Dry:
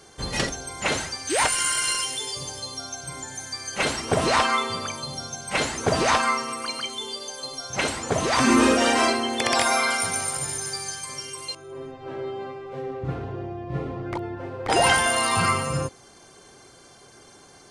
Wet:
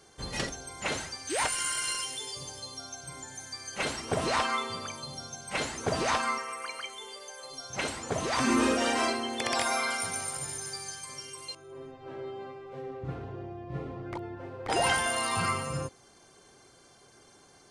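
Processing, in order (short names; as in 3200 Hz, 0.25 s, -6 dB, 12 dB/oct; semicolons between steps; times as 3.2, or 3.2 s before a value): 6.38–7.5 graphic EQ 125/250/500/2000/4000 Hz -8/-12/+3/+7/-8 dB; gain -7.5 dB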